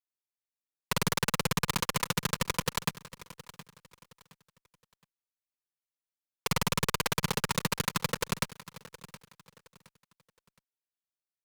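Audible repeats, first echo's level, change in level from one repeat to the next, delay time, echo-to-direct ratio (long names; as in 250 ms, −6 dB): 2, −17.5 dB, −10.0 dB, 718 ms, −17.0 dB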